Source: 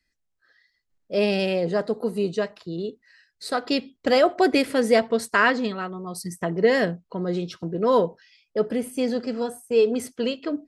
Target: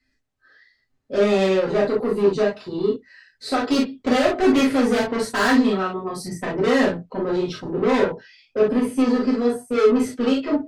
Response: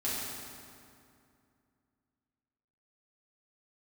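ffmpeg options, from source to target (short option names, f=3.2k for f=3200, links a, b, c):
-filter_complex "[0:a]aemphasis=mode=reproduction:type=50kf,asoftclip=type=tanh:threshold=-24.5dB[a];[1:a]atrim=start_sample=2205,atrim=end_sample=3087[b];[a][b]afir=irnorm=-1:irlink=0,volume=6dB"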